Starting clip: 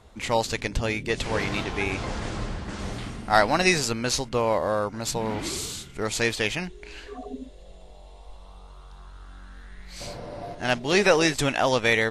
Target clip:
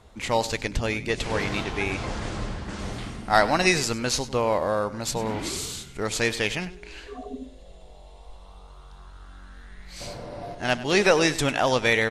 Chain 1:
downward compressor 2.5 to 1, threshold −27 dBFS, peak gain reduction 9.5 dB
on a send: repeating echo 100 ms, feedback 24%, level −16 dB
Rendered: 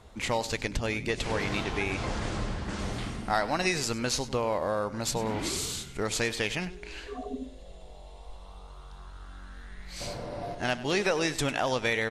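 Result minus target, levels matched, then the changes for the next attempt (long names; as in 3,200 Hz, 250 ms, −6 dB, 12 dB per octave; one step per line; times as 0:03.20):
downward compressor: peak gain reduction +9.5 dB
remove: downward compressor 2.5 to 1, threshold −27 dBFS, peak gain reduction 9.5 dB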